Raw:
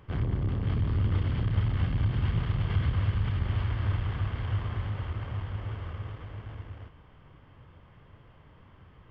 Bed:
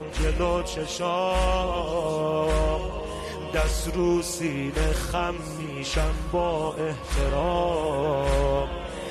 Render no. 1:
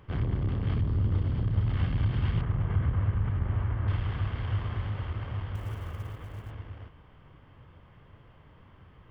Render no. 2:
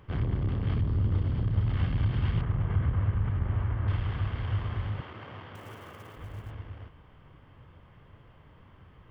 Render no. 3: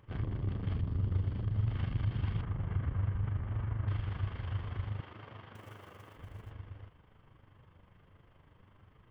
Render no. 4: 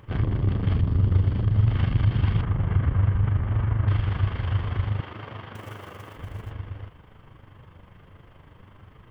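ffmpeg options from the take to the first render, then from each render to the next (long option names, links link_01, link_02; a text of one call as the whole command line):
ffmpeg -i in.wav -filter_complex "[0:a]asettb=1/sr,asplit=3[link_01][link_02][link_03];[link_01]atrim=end=0.814[link_04];[link_02]atrim=start=0.81:end=1.68,asetpts=PTS-STARTPTS,afade=type=in:duration=0.004:curve=qsin,afade=type=out:start_time=0.866:duration=0.004:curve=qsin,equalizer=frequency=2400:width_type=o:width=2.4:gain=-8[link_05];[link_03]atrim=start=1.676[link_06];[link_04][link_05]acrossfade=duration=0.004:curve1=hsin:curve2=qsin[link_07];[link_07][link_06]acrossfade=duration=0.004:curve1=qsin:curve2=hsin,asettb=1/sr,asplit=3[link_08][link_09][link_10];[link_08]atrim=end=2.414[link_11];[link_09]atrim=start=2.41:end=3.88,asetpts=PTS-STARTPTS,afade=type=in:duration=0.004:curve=qsin,afade=type=out:start_time=1.466:duration=0.004:curve=qsin,lowpass=1600[link_12];[link_10]atrim=start=3.876[link_13];[link_11][link_12]acrossfade=duration=0.004:curve1=hsin:curve2=qsin[link_14];[link_14][link_13]acrossfade=duration=0.004:curve1=qsin:curve2=hsin,asettb=1/sr,asplit=3[link_15][link_16][link_17];[link_15]atrim=end=5.554[link_18];[link_16]atrim=start=5.55:end=6.51,asetpts=PTS-STARTPTS,afade=type=in:duration=0.004:curve=qsin,afade=type=out:start_time=0.956:duration=0.004:curve=qsin,acrusher=bits=7:mode=log:mix=0:aa=0.000001[link_19];[link_17]atrim=start=6.506[link_20];[link_18][link_19]acrossfade=duration=0.004:curve1=hsin:curve2=qsin[link_21];[link_21][link_20]acrossfade=duration=0.004:curve1=qsin:curve2=hsin" out.wav
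ffmpeg -i in.wav -filter_complex "[0:a]asettb=1/sr,asplit=3[link_01][link_02][link_03];[link_01]atrim=end=5.004[link_04];[link_02]atrim=start=5:end=6.17,asetpts=PTS-STARTPTS,afade=type=in:duration=0.004:curve=qsin,afade=type=out:start_time=1.166:duration=0.004:curve=qsin,highpass=220[link_05];[link_03]atrim=start=6.166[link_06];[link_04][link_05]acrossfade=duration=0.004:curve1=hsin:curve2=qsin[link_07];[link_07][link_06]acrossfade=duration=0.004:curve1=qsin:curve2=hsin" out.wav
ffmpeg -i in.wav -af "flanger=delay=8.8:depth=2.6:regen=70:speed=0.55:shape=triangular,tremolo=f=25:d=0.571" out.wav
ffmpeg -i in.wav -af "volume=11.5dB" out.wav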